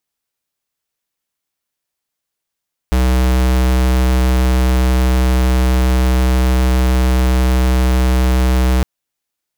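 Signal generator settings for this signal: tone square 63.4 Hz -12.5 dBFS 5.91 s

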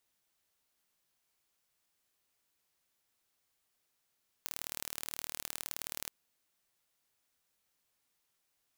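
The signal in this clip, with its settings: pulse train 38.3 per s, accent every 2, -10 dBFS 1.63 s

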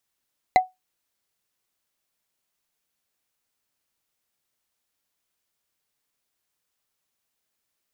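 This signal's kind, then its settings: wood hit, lowest mode 743 Hz, decay 0.18 s, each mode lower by 7 dB, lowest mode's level -8 dB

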